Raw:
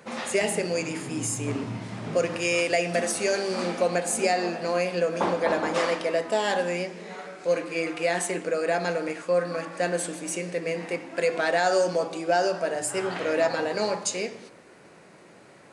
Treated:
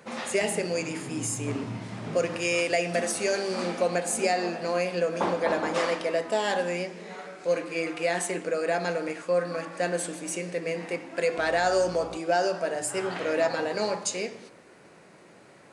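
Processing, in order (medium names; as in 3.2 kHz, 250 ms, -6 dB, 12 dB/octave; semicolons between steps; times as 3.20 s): 11.37–12.16 s: mains buzz 60 Hz, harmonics 23, -43 dBFS -2 dB/octave; trim -1.5 dB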